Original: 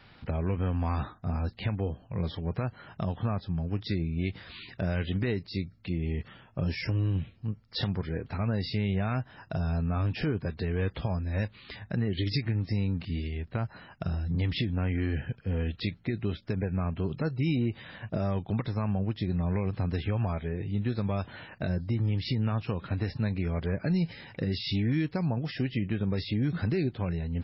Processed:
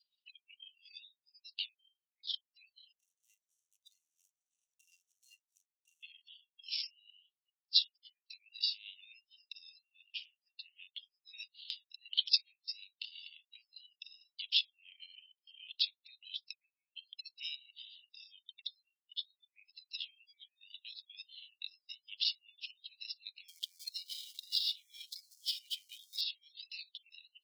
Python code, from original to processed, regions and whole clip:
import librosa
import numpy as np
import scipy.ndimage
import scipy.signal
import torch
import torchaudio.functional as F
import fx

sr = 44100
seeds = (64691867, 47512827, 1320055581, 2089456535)

y = fx.chain(x, sr, fx.median_filter(points=41),
    fx.lowpass(hz=1000.0, slope=6),
    fx.leveller(passes=1), at=(2.92, 6.03))
y = fx.chain(y, sr, fx.bandpass_edges(low_hz=220.0, high_hz=2600.0),
    fx.doppler_dist(depth_ms=0.14), at=(9.85, 11.25))
y = fx.chain(y, sr, fx.bandpass_q(hz=3700.0, q=3.3),
    fx.air_absorb(metres=100.0),
    fx.comb(ms=1.4, depth=0.67), at=(18.67, 19.39))
y = fx.chain(y, sr, fx.zero_step(step_db=-43.5),
    fx.notch(hz=2700.0, q=5.7),
    fx.band_squash(depth_pct=40), at=(23.48, 26.21))
y = fx.noise_reduce_blind(y, sr, reduce_db=25)
y = scipy.signal.sosfilt(scipy.signal.butter(12, 2800.0, 'highpass', fs=sr, output='sos'), y)
y = fx.transient(y, sr, attack_db=10, sustain_db=-5)